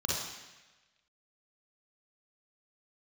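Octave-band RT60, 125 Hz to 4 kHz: 1.1, 1.1, 1.1, 1.2, 1.3, 1.2 s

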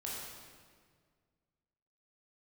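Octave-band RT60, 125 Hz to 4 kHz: 2.3, 2.1, 1.9, 1.7, 1.6, 1.4 s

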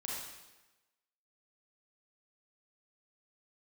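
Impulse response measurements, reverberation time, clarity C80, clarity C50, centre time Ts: 1.1 s, 1.5 dB, -2.0 dB, 81 ms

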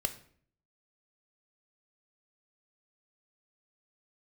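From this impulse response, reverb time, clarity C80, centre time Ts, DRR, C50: 0.55 s, 17.0 dB, 8 ms, 7.5 dB, 13.5 dB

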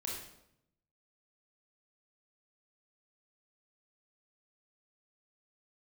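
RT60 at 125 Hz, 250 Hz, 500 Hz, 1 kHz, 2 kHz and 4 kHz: 1.2, 1.0, 0.80, 0.75, 0.65, 0.60 s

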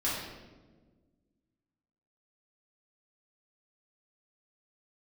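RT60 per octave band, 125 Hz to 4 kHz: 2.0, 2.1, 1.7, 1.1, 0.90, 0.85 s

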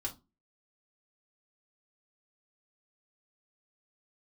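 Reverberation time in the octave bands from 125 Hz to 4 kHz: 0.35, 0.40, 0.25, 0.25, 0.15, 0.20 s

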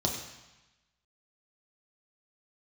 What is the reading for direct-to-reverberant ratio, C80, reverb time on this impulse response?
-0.5 dB, 7.5 dB, 1.0 s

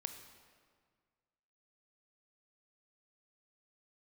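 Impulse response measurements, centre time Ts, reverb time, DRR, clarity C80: 24 ms, 1.8 s, 7.0 dB, 9.5 dB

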